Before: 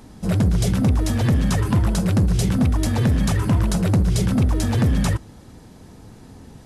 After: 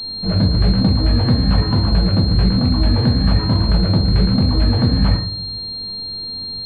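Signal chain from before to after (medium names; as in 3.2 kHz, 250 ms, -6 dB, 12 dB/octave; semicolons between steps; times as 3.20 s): simulated room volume 78 m³, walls mixed, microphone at 0.64 m; class-D stage that switches slowly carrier 4.2 kHz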